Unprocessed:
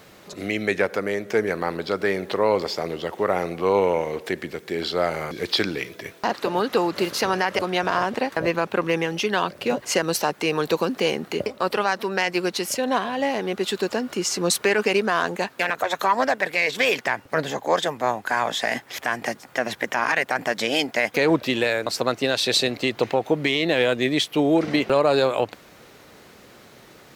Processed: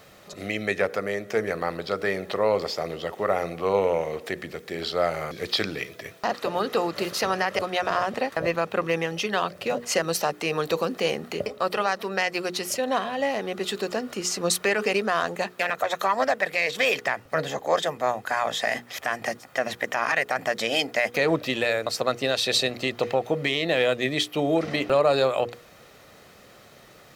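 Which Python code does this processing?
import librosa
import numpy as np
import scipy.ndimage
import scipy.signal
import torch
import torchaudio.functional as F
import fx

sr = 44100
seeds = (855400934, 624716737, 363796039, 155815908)

y = fx.hum_notches(x, sr, base_hz=60, count=8)
y = y + 0.31 * np.pad(y, (int(1.6 * sr / 1000.0), 0))[:len(y)]
y = y * librosa.db_to_amplitude(-2.5)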